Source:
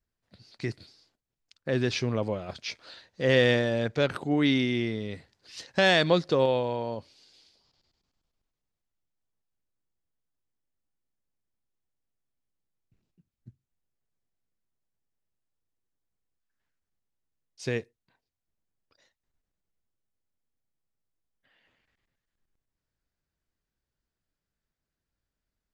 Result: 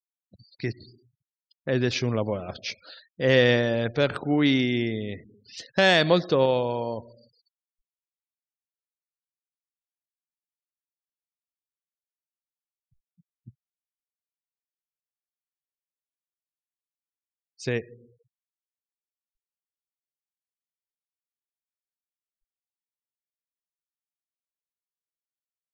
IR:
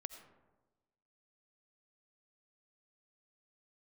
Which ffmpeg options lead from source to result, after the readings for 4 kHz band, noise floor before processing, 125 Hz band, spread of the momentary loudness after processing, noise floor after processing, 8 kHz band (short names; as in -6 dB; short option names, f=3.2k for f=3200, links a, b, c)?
+2.5 dB, under -85 dBFS, +2.5 dB, 18 LU, under -85 dBFS, +1.5 dB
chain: -filter_complex "[0:a]asplit=2[a][b];[1:a]atrim=start_sample=2205[c];[b][c]afir=irnorm=-1:irlink=0,volume=-5.5dB[d];[a][d]amix=inputs=2:normalize=0,afftfilt=real='re*gte(hypot(re,im),0.00631)':imag='im*gte(hypot(re,im),0.00631)':win_size=1024:overlap=0.75"